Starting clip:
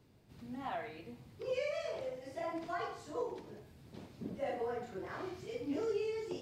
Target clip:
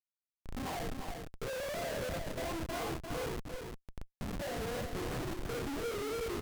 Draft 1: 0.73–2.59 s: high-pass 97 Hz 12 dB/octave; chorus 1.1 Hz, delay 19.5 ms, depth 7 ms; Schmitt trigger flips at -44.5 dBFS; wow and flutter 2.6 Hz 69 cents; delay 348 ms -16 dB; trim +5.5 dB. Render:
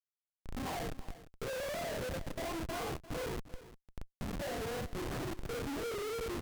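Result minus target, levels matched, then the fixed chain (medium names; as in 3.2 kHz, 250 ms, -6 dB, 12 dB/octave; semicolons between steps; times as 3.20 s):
echo-to-direct -10.5 dB
0.73–2.59 s: high-pass 97 Hz 12 dB/octave; chorus 1.1 Hz, delay 19.5 ms, depth 7 ms; Schmitt trigger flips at -44.5 dBFS; wow and flutter 2.6 Hz 69 cents; delay 348 ms -5.5 dB; trim +5.5 dB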